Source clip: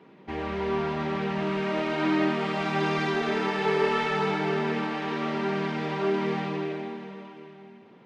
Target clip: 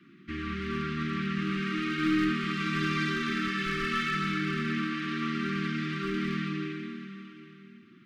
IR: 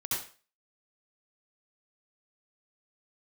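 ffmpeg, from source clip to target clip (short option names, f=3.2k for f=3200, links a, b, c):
-af "aeval=exprs='clip(val(0),-1,0.0794)':c=same,asuperstop=centerf=650:order=20:qfactor=0.84"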